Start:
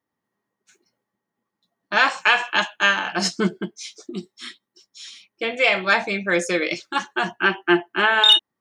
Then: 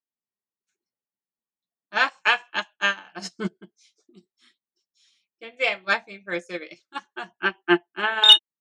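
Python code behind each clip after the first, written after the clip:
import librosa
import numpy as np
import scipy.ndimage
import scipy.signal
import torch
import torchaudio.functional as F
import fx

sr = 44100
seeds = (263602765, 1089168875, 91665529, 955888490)

y = fx.upward_expand(x, sr, threshold_db=-28.0, expansion=2.5)
y = y * 10.0 ** (3.5 / 20.0)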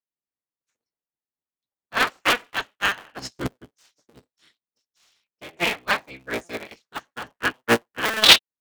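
y = fx.cycle_switch(x, sr, every=3, mode='inverted')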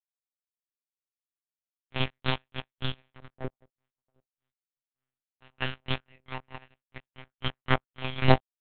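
y = fx.bin_expand(x, sr, power=1.5)
y = np.abs(y)
y = fx.lpc_monotone(y, sr, seeds[0], pitch_hz=130.0, order=8)
y = y * 10.0 ** (-3.5 / 20.0)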